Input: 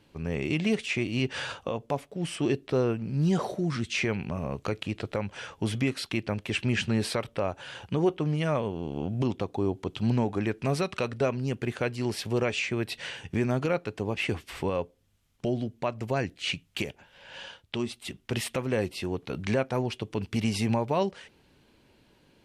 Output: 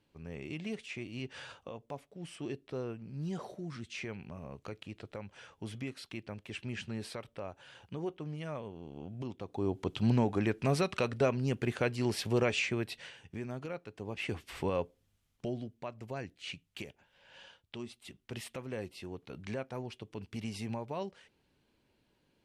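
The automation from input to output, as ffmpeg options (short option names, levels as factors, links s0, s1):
-af "volume=2.66,afade=t=in:st=9.4:d=0.44:silence=0.281838,afade=t=out:st=12.61:d=0.51:silence=0.266073,afade=t=in:st=13.9:d=0.9:silence=0.298538,afade=t=out:st=14.8:d=0.98:silence=0.354813"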